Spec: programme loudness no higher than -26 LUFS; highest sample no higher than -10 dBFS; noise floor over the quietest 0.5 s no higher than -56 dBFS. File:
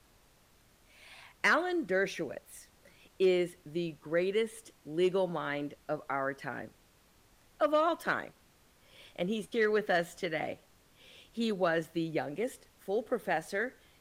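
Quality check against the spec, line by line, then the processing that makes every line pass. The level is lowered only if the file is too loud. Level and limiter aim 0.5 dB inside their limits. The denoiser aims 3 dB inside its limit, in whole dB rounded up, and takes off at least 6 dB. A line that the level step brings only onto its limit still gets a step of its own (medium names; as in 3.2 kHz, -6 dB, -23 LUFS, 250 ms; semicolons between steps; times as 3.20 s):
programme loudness -32.5 LUFS: pass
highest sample -15.5 dBFS: pass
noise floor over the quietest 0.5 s -64 dBFS: pass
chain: none needed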